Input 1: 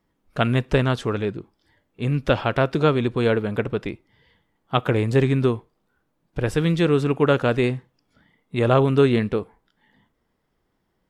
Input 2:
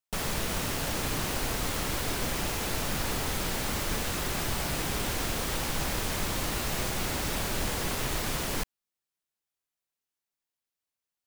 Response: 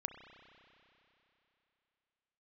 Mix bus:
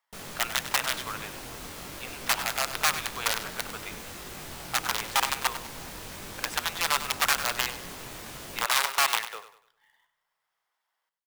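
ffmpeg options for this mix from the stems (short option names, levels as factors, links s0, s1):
-filter_complex "[0:a]aeval=exprs='(mod(3.98*val(0)+1,2)-1)/3.98':c=same,highpass=f=800:w=0.5412,highpass=f=800:w=1.3066,volume=0.668,asplit=2[s0][s1];[s1]volume=0.251[s2];[1:a]flanger=delay=19.5:depth=4.2:speed=0.93,volume=0.447,asplit=2[s3][s4];[s4]volume=0.112[s5];[2:a]atrim=start_sample=2205[s6];[s5][s6]afir=irnorm=-1:irlink=0[s7];[s2]aecho=0:1:98|196|294|392|490:1|0.35|0.122|0.0429|0.015[s8];[s0][s3][s7][s8]amix=inputs=4:normalize=0,lowshelf=f=93:g=-7,acrusher=bits=2:mode=log:mix=0:aa=0.000001"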